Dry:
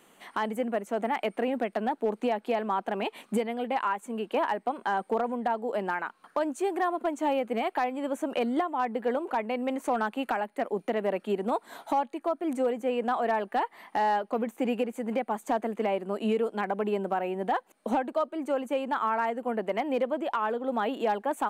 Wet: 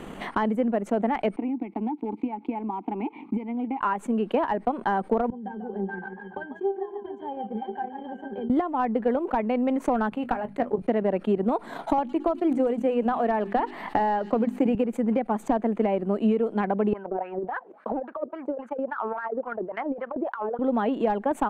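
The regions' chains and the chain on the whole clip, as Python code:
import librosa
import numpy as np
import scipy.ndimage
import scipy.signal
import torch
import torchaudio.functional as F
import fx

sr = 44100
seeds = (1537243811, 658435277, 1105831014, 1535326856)

y = fx.chain(x, sr, fx.vowel_filter(vowel='u'),
    fx.peak_eq(hz=540.0, db=4.0, octaves=0.42),
    fx.band_squash(depth_pct=100), at=(1.36, 3.81))
y = fx.chain(y, sr, fx.highpass(hz=260.0, slope=6),
    fx.octave_resonator(note='G', decay_s=0.19),
    fx.echo_warbled(ms=144, feedback_pct=53, rate_hz=2.8, cents=103, wet_db=-11), at=(5.3, 8.5))
y = fx.chain(y, sr, fx.level_steps(step_db=9),
    fx.hum_notches(base_hz=50, count=5),
    fx.doubler(ms=21.0, db=-11.5), at=(10.1, 10.82))
y = fx.chain(y, sr, fx.hum_notches(base_hz=50, count=8),
    fx.echo_wet_highpass(ms=110, feedback_pct=64, hz=3900.0, wet_db=-9.0),
    fx.band_squash(depth_pct=70), at=(11.98, 14.75))
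y = fx.chain(y, sr, fx.filter_lfo_bandpass(shape='sine', hz=3.6, low_hz=380.0, high_hz=1600.0, q=4.3),
    fx.over_compress(threshold_db=-39.0, ratio=-1.0), at=(16.93, 20.59))
y = fx.riaa(y, sr, side='playback')
y = fx.transient(y, sr, attack_db=5, sustain_db=-8)
y = fx.env_flatten(y, sr, amount_pct=50)
y = F.gain(torch.from_numpy(y), -4.0).numpy()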